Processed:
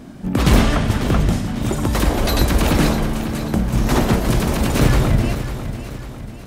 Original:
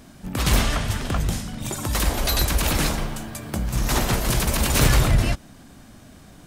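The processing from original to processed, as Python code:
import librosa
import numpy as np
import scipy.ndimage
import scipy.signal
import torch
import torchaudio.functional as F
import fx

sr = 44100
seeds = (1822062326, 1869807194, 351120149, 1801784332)

y = fx.high_shelf(x, sr, hz=4100.0, db=-7.5)
y = fx.rider(y, sr, range_db=4, speed_s=2.0)
y = fx.peak_eq(y, sr, hz=270.0, db=7.0, octaves=2.3)
y = fx.echo_feedback(y, sr, ms=547, feedback_pct=49, wet_db=-11.0)
y = y * librosa.db_to_amplitude(2.0)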